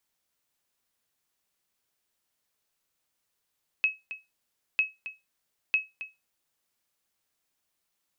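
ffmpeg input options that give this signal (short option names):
-f lavfi -i "aevalsrc='0.158*(sin(2*PI*2570*mod(t,0.95))*exp(-6.91*mod(t,0.95)/0.21)+0.211*sin(2*PI*2570*max(mod(t,0.95)-0.27,0))*exp(-6.91*max(mod(t,0.95)-0.27,0)/0.21))':d=2.85:s=44100"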